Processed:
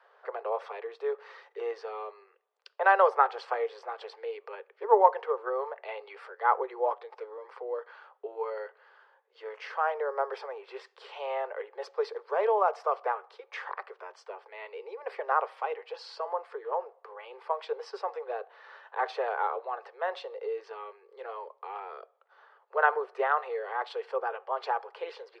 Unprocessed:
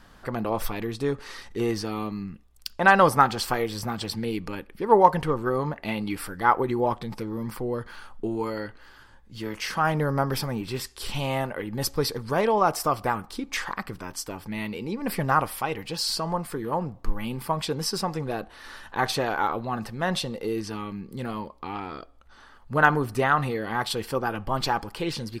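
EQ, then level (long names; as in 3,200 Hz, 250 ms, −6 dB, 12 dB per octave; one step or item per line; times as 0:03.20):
Butterworth high-pass 410 Hz 96 dB per octave
head-to-tape spacing loss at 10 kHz 42 dB
0.0 dB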